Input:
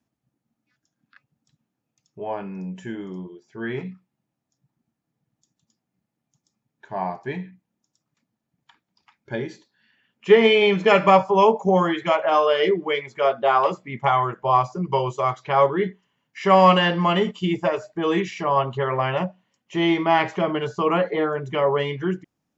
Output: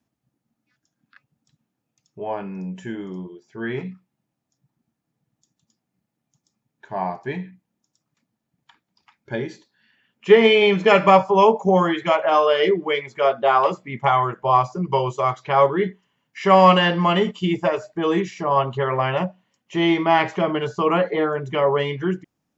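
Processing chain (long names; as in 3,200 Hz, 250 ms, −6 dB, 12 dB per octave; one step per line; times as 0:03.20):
0:18.06–0:18.50: parametric band 2,700 Hz −3 dB → −9.5 dB 1.4 octaves
level +1.5 dB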